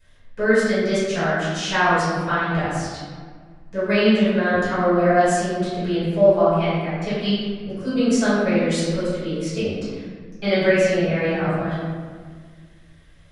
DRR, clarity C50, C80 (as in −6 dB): −14.0 dB, −2.5 dB, 0.0 dB